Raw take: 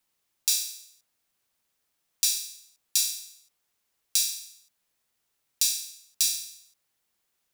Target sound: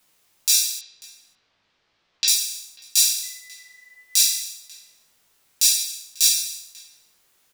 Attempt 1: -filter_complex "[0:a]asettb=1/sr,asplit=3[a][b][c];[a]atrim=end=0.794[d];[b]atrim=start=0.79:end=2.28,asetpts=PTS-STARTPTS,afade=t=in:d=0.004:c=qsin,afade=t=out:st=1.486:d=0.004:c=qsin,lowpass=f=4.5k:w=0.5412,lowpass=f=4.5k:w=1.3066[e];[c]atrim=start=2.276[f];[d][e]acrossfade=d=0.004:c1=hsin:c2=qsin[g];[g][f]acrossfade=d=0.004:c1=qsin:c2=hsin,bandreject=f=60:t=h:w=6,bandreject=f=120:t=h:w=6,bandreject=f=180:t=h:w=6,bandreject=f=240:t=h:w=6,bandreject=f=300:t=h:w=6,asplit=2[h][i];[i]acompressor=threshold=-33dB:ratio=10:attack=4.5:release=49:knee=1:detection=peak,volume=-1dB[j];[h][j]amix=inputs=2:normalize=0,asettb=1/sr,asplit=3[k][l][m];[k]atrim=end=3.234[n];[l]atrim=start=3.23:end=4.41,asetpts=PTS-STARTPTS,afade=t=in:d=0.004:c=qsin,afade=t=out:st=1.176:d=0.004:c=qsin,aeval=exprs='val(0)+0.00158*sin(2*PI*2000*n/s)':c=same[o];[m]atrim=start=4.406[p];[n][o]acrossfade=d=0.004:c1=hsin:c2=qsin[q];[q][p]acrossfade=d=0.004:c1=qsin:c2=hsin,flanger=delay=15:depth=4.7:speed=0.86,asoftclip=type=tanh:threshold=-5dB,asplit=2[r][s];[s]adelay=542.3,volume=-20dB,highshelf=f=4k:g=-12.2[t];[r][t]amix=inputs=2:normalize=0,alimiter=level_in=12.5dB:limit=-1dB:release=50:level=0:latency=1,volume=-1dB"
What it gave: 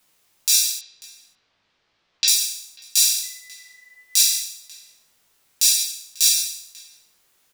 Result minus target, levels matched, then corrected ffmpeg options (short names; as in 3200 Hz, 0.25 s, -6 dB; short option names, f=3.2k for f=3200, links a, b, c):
compressor: peak gain reduction -9.5 dB
-filter_complex "[0:a]asettb=1/sr,asplit=3[a][b][c];[a]atrim=end=0.794[d];[b]atrim=start=0.79:end=2.28,asetpts=PTS-STARTPTS,afade=t=in:d=0.004:c=qsin,afade=t=out:st=1.486:d=0.004:c=qsin,lowpass=f=4.5k:w=0.5412,lowpass=f=4.5k:w=1.3066[e];[c]atrim=start=2.276[f];[d][e]acrossfade=d=0.004:c1=hsin:c2=qsin[g];[g][f]acrossfade=d=0.004:c1=qsin:c2=hsin,bandreject=f=60:t=h:w=6,bandreject=f=120:t=h:w=6,bandreject=f=180:t=h:w=6,bandreject=f=240:t=h:w=6,bandreject=f=300:t=h:w=6,asplit=2[h][i];[i]acompressor=threshold=-43.5dB:ratio=10:attack=4.5:release=49:knee=1:detection=peak,volume=-1dB[j];[h][j]amix=inputs=2:normalize=0,asettb=1/sr,asplit=3[k][l][m];[k]atrim=end=3.234[n];[l]atrim=start=3.23:end=4.41,asetpts=PTS-STARTPTS,afade=t=in:d=0.004:c=qsin,afade=t=out:st=1.176:d=0.004:c=qsin,aeval=exprs='val(0)+0.00158*sin(2*PI*2000*n/s)':c=same[o];[m]atrim=start=4.406[p];[n][o]acrossfade=d=0.004:c1=hsin:c2=qsin[q];[q][p]acrossfade=d=0.004:c1=qsin:c2=hsin,flanger=delay=15:depth=4.7:speed=0.86,asoftclip=type=tanh:threshold=-5dB,asplit=2[r][s];[s]adelay=542.3,volume=-20dB,highshelf=f=4k:g=-12.2[t];[r][t]amix=inputs=2:normalize=0,alimiter=level_in=12.5dB:limit=-1dB:release=50:level=0:latency=1,volume=-1dB"